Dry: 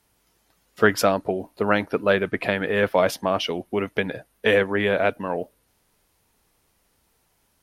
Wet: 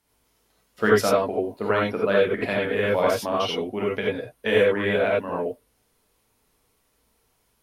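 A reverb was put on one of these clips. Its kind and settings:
reverb whose tail is shaped and stops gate 110 ms rising, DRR −4 dB
level −6.5 dB

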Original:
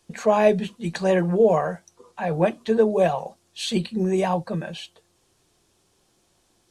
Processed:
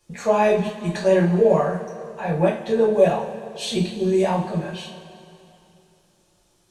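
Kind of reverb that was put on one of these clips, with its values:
coupled-rooms reverb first 0.33 s, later 2.8 s, from −18 dB, DRR −5 dB
level −5 dB

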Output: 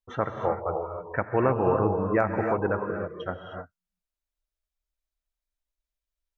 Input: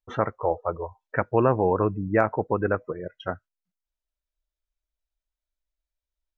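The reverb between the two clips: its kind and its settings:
reverb whose tail is shaped and stops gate 330 ms rising, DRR 3 dB
level −3 dB

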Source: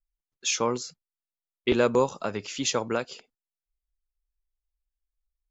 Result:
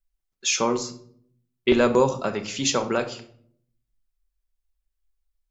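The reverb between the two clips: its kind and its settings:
rectangular room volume 900 cubic metres, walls furnished, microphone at 1.1 metres
level +3 dB

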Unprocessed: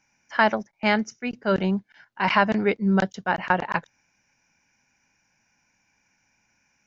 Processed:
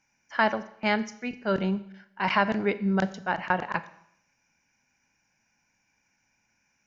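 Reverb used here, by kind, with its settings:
four-comb reverb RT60 0.74 s, combs from 28 ms, DRR 14 dB
level −4 dB

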